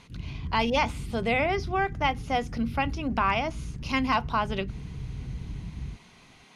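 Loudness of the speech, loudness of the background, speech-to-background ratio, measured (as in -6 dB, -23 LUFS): -28.0 LUFS, -38.0 LUFS, 10.0 dB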